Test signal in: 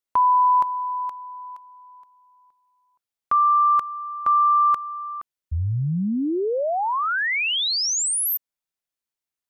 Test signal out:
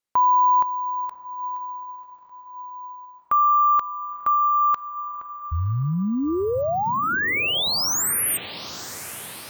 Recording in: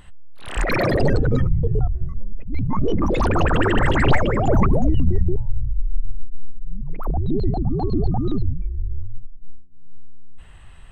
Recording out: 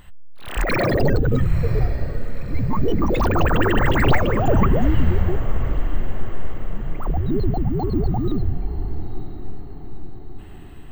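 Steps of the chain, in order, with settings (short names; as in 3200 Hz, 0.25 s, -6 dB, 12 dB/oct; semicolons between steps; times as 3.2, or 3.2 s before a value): diffused feedback echo 0.961 s, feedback 54%, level -13.5 dB; careless resampling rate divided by 2×, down none, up hold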